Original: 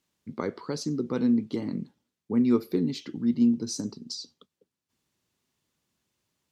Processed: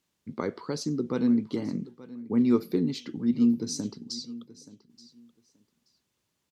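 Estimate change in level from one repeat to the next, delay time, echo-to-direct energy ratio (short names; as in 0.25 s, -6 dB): -15.5 dB, 0.878 s, -18.0 dB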